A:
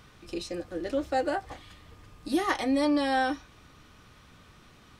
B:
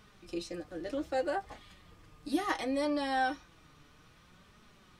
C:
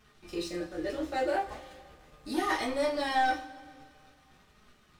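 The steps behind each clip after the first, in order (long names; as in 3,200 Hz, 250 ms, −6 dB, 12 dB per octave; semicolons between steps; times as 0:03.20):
flanger 0.65 Hz, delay 4.6 ms, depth 2.4 ms, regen +47%; level −1 dB
leveller curve on the samples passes 2; coupled-rooms reverb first 0.29 s, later 2.2 s, from −22 dB, DRR −4.5 dB; level −8 dB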